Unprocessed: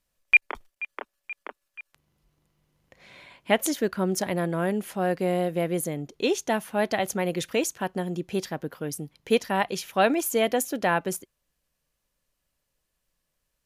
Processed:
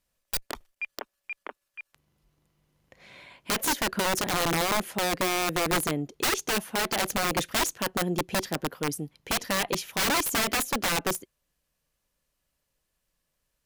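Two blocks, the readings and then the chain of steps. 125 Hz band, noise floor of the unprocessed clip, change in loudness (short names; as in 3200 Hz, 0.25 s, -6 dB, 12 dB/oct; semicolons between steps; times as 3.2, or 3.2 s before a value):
-3.0 dB, -80 dBFS, -1.0 dB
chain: one diode to ground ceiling -12 dBFS; dynamic EQ 340 Hz, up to +5 dB, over -36 dBFS, Q 1; wrapped overs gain 20 dB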